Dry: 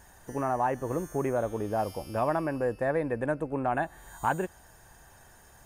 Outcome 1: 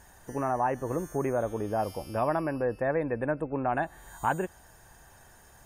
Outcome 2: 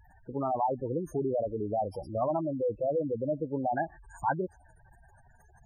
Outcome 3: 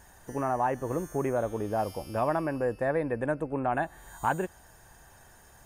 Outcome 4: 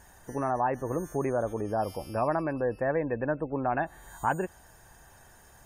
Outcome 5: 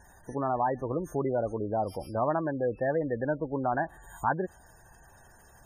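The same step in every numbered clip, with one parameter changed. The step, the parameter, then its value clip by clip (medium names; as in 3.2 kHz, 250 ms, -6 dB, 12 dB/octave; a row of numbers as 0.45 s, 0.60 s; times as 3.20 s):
spectral gate, under each frame's peak: -45 dB, -10 dB, -60 dB, -35 dB, -20 dB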